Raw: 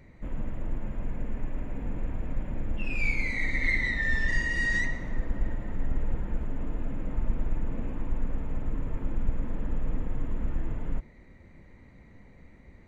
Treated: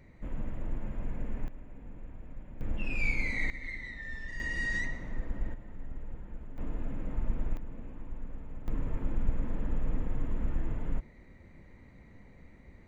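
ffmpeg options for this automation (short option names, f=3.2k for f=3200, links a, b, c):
-af "asetnsamples=n=441:p=0,asendcmd='1.48 volume volume -13.5dB;2.61 volume volume -2.5dB;3.5 volume volume -14dB;4.4 volume volume -5.5dB;5.54 volume volume -12.5dB;6.58 volume volume -3.5dB;7.57 volume volume -11dB;8.68 volume volume -1.5dB',volume=-3dB"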